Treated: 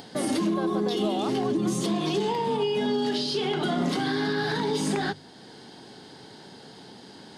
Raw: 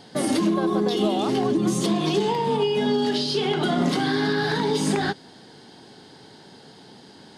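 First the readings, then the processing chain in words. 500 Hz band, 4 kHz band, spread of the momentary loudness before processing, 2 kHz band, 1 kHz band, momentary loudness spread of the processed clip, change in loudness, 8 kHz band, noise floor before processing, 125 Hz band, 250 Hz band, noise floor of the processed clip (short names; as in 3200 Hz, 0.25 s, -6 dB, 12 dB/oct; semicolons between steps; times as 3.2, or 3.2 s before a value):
-3.5 dB, -3.5 dB, 1 LU, -3.5 dB, -3.5 dB, 20 LU, -3.5 dB, -3.5 dB, -48 dBFS, -4.5 dB, -4.0 dB, -48 dBFS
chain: notches 50/100/150 Hz; in parallel at +1.5 dB: limiter -19 dBFS, peak gain reduction 7.5 dB; on the sum: upward compressor, threshold -32 dBFS; gain -8.5 dB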